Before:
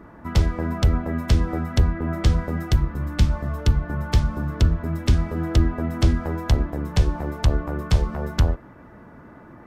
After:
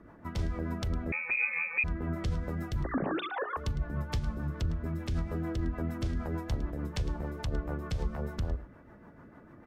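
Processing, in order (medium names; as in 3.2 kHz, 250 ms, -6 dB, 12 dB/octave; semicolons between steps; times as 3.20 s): 2.84–3.57 s: formants replaced by sine waves; hum notches 60/120/180/240/300/360/420 Hz; peak limiter -16.5 dBFS, peak gain reduction 9 dB; rotary cabinet horn 6.7 Hz; delay 107 ms -16 dB; 1.12–1.84 s: frequency inversion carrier 2.5 kHz; trim -6 dB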